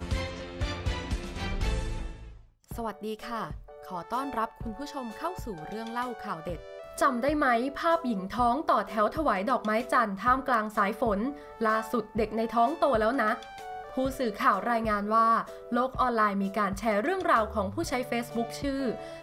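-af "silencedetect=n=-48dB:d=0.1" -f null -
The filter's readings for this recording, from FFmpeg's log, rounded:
silence_start: 2.41
silence_end: 2.64 | silence_duration: 0.23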